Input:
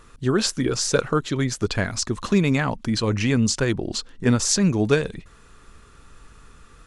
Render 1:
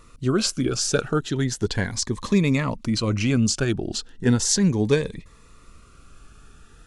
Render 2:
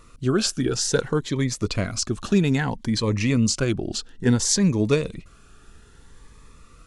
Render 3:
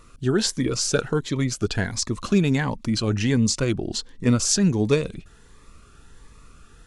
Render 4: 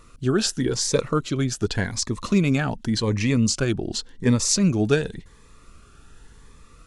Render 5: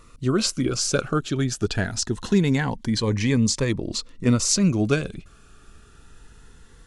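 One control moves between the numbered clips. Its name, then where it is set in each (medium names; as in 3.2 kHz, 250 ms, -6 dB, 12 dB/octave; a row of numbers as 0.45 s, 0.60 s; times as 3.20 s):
Shepard-style phaser, rate: 0.36 Hz, 0.6 Hz, 1.4 Hz, 0.89 Hz, 0.24 Hz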